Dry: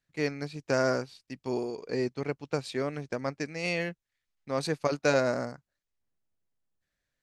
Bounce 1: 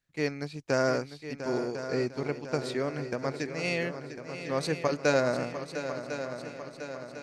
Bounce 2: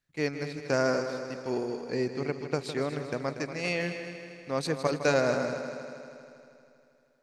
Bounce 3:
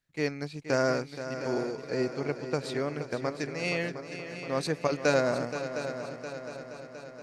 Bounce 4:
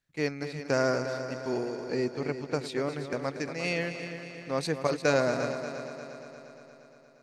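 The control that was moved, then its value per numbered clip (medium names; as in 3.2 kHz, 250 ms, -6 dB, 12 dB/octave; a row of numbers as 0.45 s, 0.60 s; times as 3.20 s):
multi-head delay, time: 350 ms, 79 ms, 237 ms, 117 ms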